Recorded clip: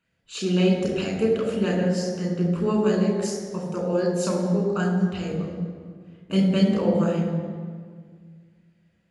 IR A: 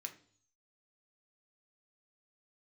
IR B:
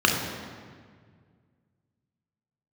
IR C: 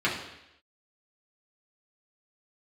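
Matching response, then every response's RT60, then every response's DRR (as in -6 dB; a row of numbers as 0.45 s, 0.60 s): B; 0.50 s, 1.8 s, 0.85 s; 4.5 dB, 0.0 dB, -6.5 dB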